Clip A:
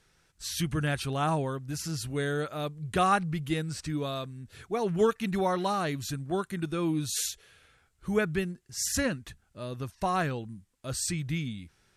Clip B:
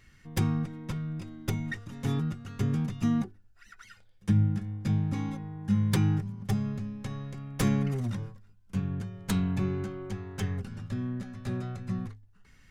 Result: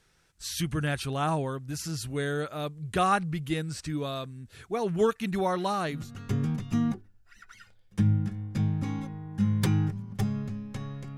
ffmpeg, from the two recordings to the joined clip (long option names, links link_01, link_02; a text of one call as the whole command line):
ffmpeg -i cue0.wav -i cue1.wav -filter_complex "[0:a]apad=whole_dur=11.17,atrim=end=11.17,atrim=end=6.12,asetpts=PTS-STARTPTS[link_01];[1:a]atrim=start=2.16:end=7.47,asetpts=PTS-STARTPTS[link_02];[link_01][link_02]acrossfade=duration=0.26:curve1=tri:curve2=tri" out.wav